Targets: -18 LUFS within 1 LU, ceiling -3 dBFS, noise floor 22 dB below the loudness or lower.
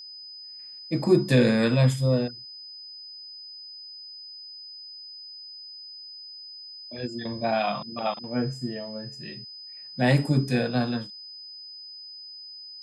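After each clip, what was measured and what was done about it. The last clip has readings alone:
steady tone 5 kHz; tone level -40 dBFS; loudness -25.5 LUFS; peak level -8.0 dBFS; loudness target -18.0 LUFS
-> band-stop 5 kHz, Q 30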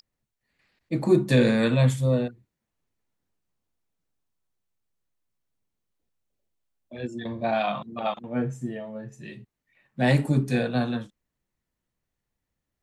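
steady tone not found; loudness -25.0 LUFS; peak level -8.0 dBFS; loudness target -18.0 LUFS
-> trim +7 dB; peak limiter -3 dBFS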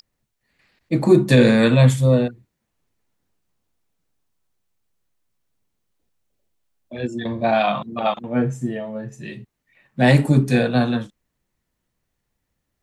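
loudness -18.0 LUFS; peak level -3.0 dBFS; noise floor -77 dBFS

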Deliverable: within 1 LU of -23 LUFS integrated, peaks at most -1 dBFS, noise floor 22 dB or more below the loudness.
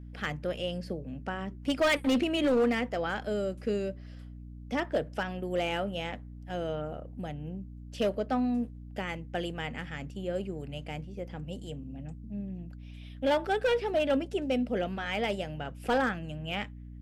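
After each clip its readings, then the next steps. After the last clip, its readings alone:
clipped samples 0.8%; clipping level -21.0 dBFS; hum 60 Hz; highest harmonic 300 Hz; hum level -42 dBFS; loudness -32.0 LUFS; peak level -21.0 dBFS; loudness target -23.0 LUFS
-> clip repair -21 dBFS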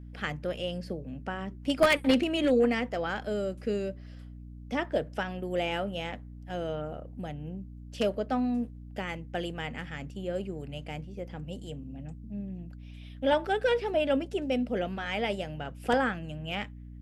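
clipped samples 0.0%; hum 60 Hz; highest harmonic 300 Hz; hum level -42 dBFS
-> hum notches 60/120/180/240/300 Hz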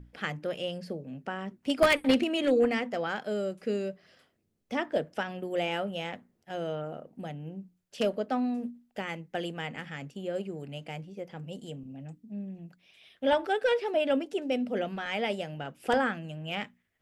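hum not found; loudness -31.5 LUFS; peak level -11.5 dBFS; loudness target -23.0 LUFS
-> trim +8.5 dB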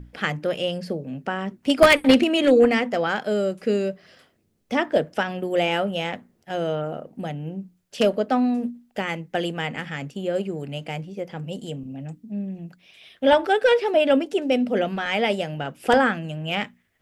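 loudness -23.0 LUFS; peak level -3.0 dBFS; noise floor -66 dBFS

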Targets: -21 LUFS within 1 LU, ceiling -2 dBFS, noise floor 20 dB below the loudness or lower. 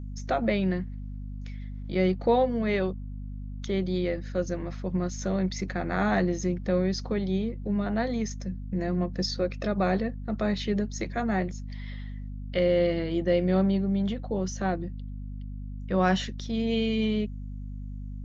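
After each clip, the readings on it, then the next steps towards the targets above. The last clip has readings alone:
hum 50 Hz; highest harmonic 250 Hz; hum level -34 dBFS; loudness -28.0 LUFS; peak level -10.5 dBFS; loudness target -21.0 LUFS
-> de-hum 50 Hz, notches 5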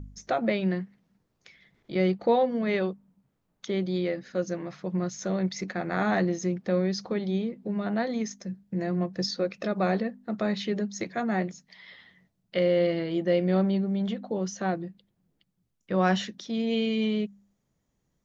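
hum not found; loudness -28.5 LUFS; peak level -10.5 dBFS; loudness target -21.0 LUFS
-> trim +7.5 dB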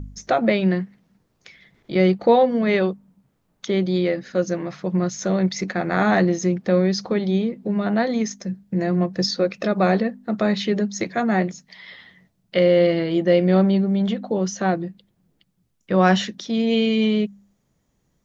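loudness -21.0 LUFS; peak level -3.0 dBFS; noise floor -69 dBFS

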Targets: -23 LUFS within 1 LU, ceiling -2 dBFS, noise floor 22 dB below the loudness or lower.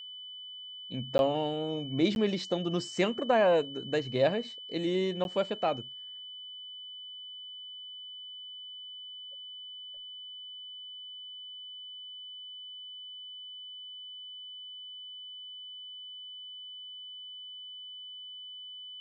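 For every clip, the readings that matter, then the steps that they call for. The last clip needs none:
dropouts 3; longest dropout 11 ms; steady tone 3 kHz; tone level -42 dBFS; loudness -35.0 LUFS; peak level -14.5 dBFS; loudness target -23.0 LUFS
-> interpolate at 1.18/2.15/5.24 s, 11 ms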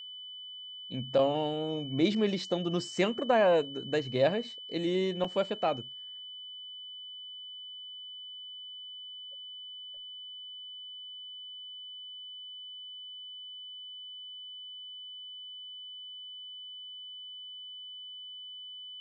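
dropouts 0; steady tone 3 kHz; tone level -42 dBFS
-> band-stop 3 kHz, Q 30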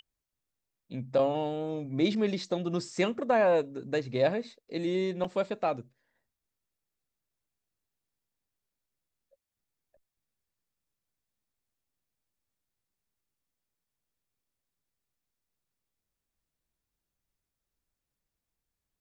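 steady tone not found; loudness -30.0 LUFS; peak level -14.5 dBFS; loudness target -23.0 LUFS
-> trim +7 dB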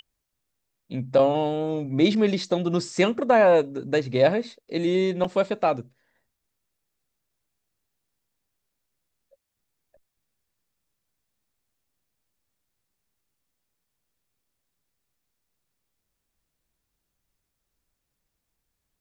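loudness -23.0 LUFS; peak level -7.5 dBFS; noise floor -81 dBFS

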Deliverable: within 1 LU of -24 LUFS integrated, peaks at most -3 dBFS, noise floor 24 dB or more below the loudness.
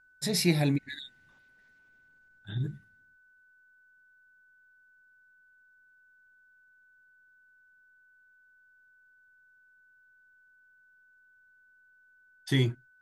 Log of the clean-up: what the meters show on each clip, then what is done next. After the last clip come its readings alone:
steady tone 1.5 kHz; tone level -60 dBFS; loudness -29.5 LUFS; peak level -12.0 dBFS; loudness target -24.0 LUFS
-> band-stop 1.5 kHz, Q 30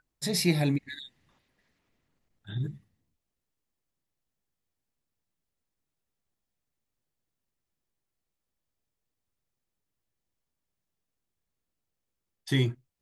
steady tone not found; loudness -29.5 LUFS; peak level -12.0 dBFS; loudness target -24.0 LUFS
-> trim +5.5 dB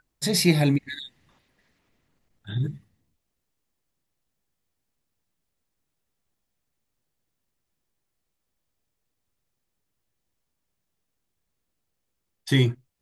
loudness -24.0 LUFS; peak level -6.5 dBFS; noise floor -80 dBFS

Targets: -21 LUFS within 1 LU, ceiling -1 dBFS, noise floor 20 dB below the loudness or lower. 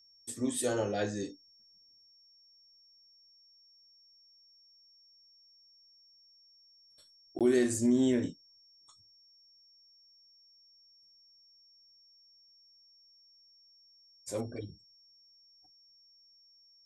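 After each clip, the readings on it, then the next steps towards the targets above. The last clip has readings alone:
dropouts 1; longest dropout 17 ms; steady tone 5.5 kHz; tone level -60 dBFS; loudness -31.5 LUFS; peak level -16.0 dBFS; loudness target -21.0 LUFS
-> interpolate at 7.39 s, 17 ms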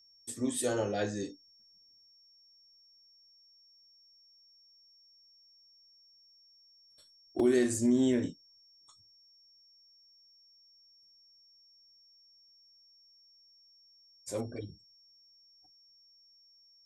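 dropouts 0; steady tone 5.5 kHz; tone level -60 dBFS
-> band-stop 5.5 kHz, Q 30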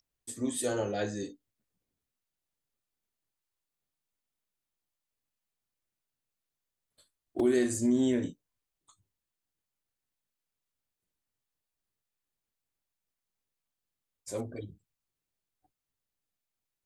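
steady tone not found; loudness -31.0 LUFS; peak level -16.0 dBFS; loudness target -21.0 LUFS
-> trim +10 dB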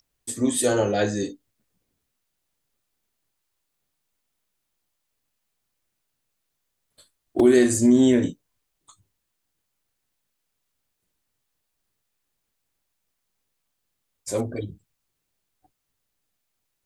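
loudness -21.0 LUFS; peak level -6.0 dBFS; noise floor -79 dBFS

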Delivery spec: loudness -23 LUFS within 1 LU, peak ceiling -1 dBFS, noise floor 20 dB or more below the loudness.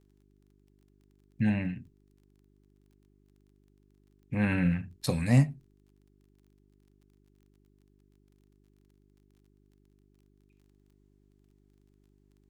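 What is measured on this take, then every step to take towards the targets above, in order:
tick rate 19 per s; hum 50 Hz; highest harmonic 400 Hz; hum level -65 dBFS; loudness -29.0 LUFS; peak level -11.5 dBFS; loudness target -23.0 LUFS
-> de-click; de-hum 50 Hz, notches 8; trim +6 dB

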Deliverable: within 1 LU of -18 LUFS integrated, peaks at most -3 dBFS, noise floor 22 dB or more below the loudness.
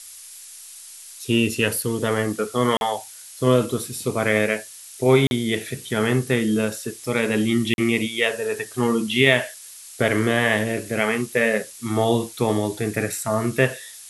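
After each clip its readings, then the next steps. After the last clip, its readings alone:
dropouts 3; longest dropout 41 ms; noise floor -42 dBFS; noise floor target -44 dBFS; loudness -22.0 LUFS; peak level -2.5 dBFS; loudness target -18.0 LUFS
-> interpolate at 2.77/5.27/7.74 s, 41 ms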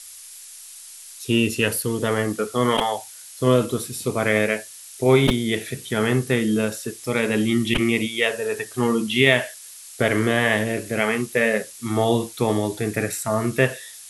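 dropouts 0; noise floor -42 dBFS; noise floor target -44 dBFS
-> noise reduction 6 dB, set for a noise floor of -42 dBFS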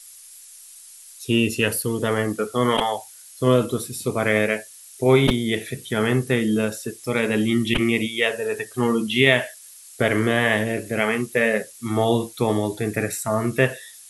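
noise floor -45 dBFS; loudness -22.0 LUFS; peak level -2.5 dBFS; loudness target -18.0 LUFS
-> trim +4 dB; peak limiter -3 dBFS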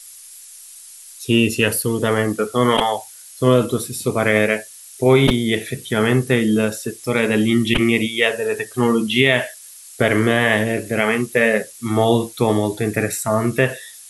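loudness -18.5 LUFS; peak level -3.0 dBFS; noise floor -41 dBFS

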